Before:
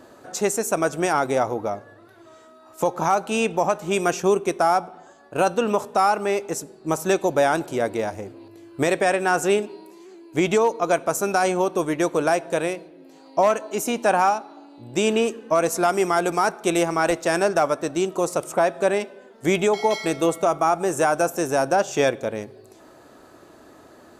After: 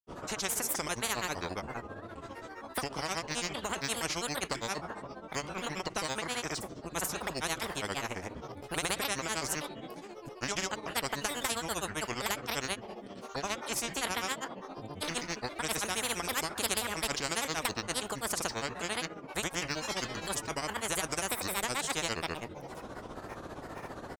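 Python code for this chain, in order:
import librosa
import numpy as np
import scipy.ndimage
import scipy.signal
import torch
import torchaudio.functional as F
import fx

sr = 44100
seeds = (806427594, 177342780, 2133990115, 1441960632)

y = fx.tilt_eq(x, sr, slope=-2.0)
y = fx.granulator(y, sr, seeds[0], grain_ms=100.0, per_s=15.0, spray_ms=100.0, spread_st=7)
y = fx.spectral_comp(y, sr, ratio=4.0)
y = y * 10.0 ** (-6.5 / 20.0)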